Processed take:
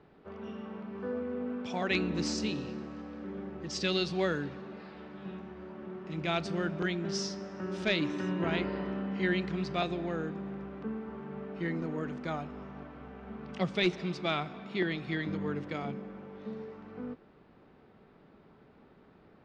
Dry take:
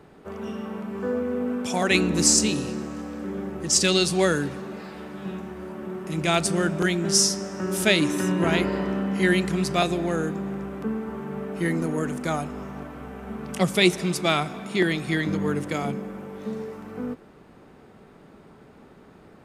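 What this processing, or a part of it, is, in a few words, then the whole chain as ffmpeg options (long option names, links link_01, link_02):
synthesiser wavefolder: -af "aeval=exprs='0.398*(abs(mod(val(0)/0.398+3,4)-2)-1)':channel_layout=same,lowpass=frequency=4600:width=0.5412,lowpass=frequency=4600:width=1.3066,volume=-9dB"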